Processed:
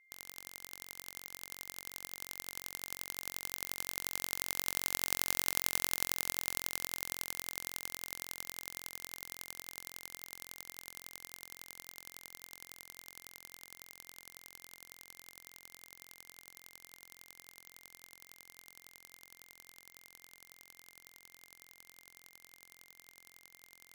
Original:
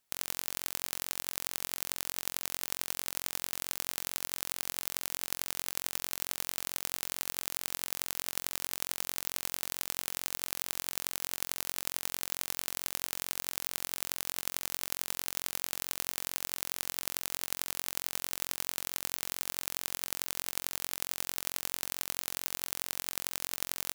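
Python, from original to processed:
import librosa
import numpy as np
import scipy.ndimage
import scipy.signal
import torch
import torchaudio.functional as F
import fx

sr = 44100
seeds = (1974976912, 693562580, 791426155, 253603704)

y = fx.doppler_pass(x, sr, speed_mps=8, closest_m=7.1, pass_at_s=5.48)
y = y + 10.0 ** (-68.0 / 20.0) * np.sin(2.0 * np.pi * 2100.0 * np.arange(len(y)) / sr)
y = y * librosa.db_to_amplitude(3.0)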